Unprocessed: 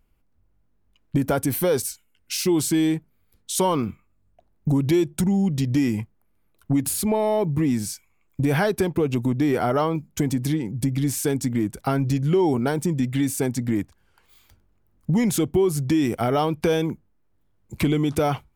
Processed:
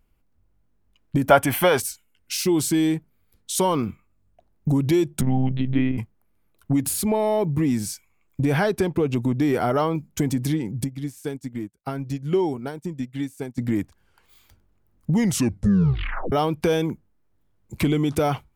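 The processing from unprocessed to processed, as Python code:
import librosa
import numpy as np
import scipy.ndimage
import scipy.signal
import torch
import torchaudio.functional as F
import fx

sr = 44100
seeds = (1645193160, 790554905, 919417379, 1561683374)

y = fx.spec_box(x, sr, start_s=1.29, length_s=0.51, low_hz=550.0, high_hz=3500.0, gain_db=11)
y = fx.lpc_monotone(y, sr, seeds[0], pitch_hz=130.0, order=10, at=(5.21, 5.98))
y = fx.high_shelf(y, sr, hz=10000.0, db=-8.0, at=(8.41, 9.39))
y = fx.upward_expand(y, sr, threshold_db=-40.0, expansion=2.5, at=(10.84, 13.58))
y = fx.edit(y, sr, fx.tape_stop(start_s=15.18, length_s=1.14), tone=tone)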